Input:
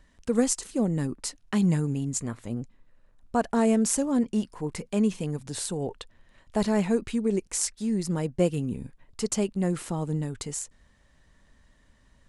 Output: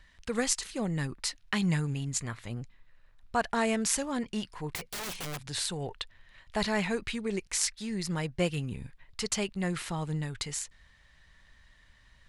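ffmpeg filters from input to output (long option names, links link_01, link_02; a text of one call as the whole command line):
ffmpeg -i in.wav -filter_complex "[0:a]equalizer=frequency=250:width_type=o:width=1:gain=-9,equalizer=frequency=500:width_type=o:width=1:gain=-5,equalizer=frequency=2000:width_type=o:width=1:gain=6,equalizer=frequency=4000:width_type=o:width=1:gain=6,equalizer=frequency=8000:width_type=o:width=1:gain=-4,asettb=1/sr,asplit=3[link_01][link_02][link_03];[link_01]atrim=end=4.754[link_04];[link_02]atrim=start=4.75:end=5.46,asetpts=PTS-STARTPTS,afade=type=in:duration=0.004:curve=qsin,afade=type=out:start_time=0.706:duration=0.004:curve=qsin,aeval=exprs='(mod(39.8*val(0)+1,2)-1)/39.8':channel_layout=same[link_05];[link_03]atrim=start=5.456[link_06];[link_04][link_05]acrossfade=duration=0.004:curve1=hsin:curve2=qsin[link_07];[link_07][link_06]acrossfade=duration=0.004:curve1=qsin:curve2=hsin" out.wav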